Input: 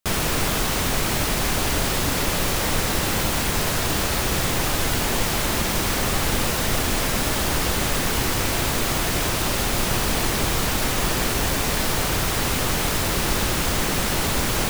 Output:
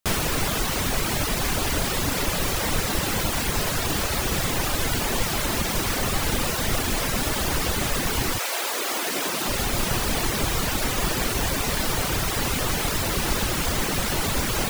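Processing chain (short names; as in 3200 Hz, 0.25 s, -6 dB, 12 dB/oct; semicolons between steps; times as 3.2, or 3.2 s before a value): reverb removal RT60 0.76 s; 8.37–9.46 HPF 570 Hz -> 160 Hz 24 dB/oct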